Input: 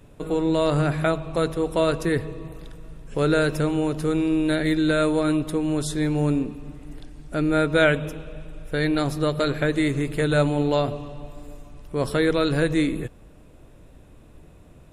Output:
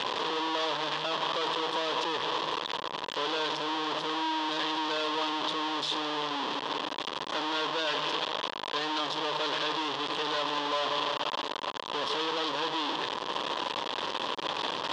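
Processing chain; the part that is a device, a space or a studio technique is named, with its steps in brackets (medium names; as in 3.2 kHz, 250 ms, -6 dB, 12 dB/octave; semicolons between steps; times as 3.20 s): home computer beeper (one-bit comparator; cabinet simulation 600–4600 Hz, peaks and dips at 700 Hz -7 dB, 1 kHz +8 dB, 1.4 kHz -6 dB, 2.2 kHz -9 dB, 3.3 kHz +8 dB); trim -1.5 dB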